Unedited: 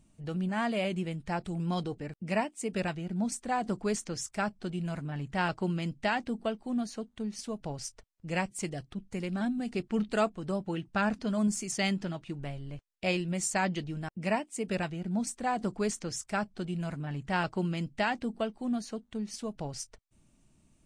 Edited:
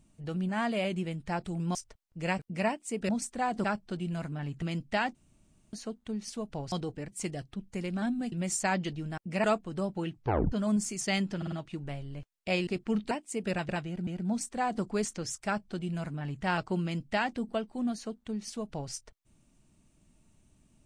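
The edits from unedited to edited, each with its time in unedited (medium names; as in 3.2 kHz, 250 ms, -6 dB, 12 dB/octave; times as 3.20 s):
1.75–2.11 s: swap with 7.83–8.47 s
2.81–3.19 s: move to 14.93 s
3.74–4.37 s: delete
5.35–5.73 s: delete
6.26–6.84 s: room tone
9.71–10.15 s: swap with 13.23–14.35 s
10.84 s: tape stop 0.39 s
12.08 s: stutter 0.05 s, 4 plays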